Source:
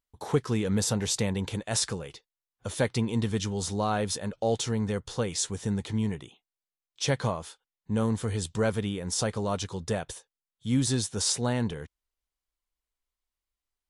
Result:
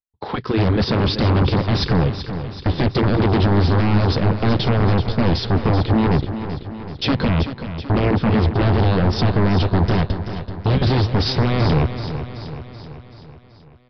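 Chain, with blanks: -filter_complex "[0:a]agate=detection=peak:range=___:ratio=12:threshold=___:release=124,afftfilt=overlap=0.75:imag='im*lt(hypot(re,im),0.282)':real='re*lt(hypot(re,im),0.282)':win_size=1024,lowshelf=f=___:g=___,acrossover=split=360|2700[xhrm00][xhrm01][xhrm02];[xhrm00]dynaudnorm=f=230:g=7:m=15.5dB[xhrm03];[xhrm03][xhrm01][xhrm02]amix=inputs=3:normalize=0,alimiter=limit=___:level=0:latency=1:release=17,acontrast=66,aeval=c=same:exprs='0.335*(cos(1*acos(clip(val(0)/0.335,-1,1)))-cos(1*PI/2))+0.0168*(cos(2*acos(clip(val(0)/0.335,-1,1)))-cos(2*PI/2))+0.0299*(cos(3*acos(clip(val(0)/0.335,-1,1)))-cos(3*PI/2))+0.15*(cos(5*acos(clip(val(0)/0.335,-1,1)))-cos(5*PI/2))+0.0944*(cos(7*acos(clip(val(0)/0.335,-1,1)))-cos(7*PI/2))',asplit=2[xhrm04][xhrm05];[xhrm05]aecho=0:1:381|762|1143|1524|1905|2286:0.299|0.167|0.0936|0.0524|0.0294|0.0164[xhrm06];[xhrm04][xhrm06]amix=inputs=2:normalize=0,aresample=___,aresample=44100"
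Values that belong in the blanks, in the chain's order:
-26dB, -42dB, 210, 6, -16dB, 11025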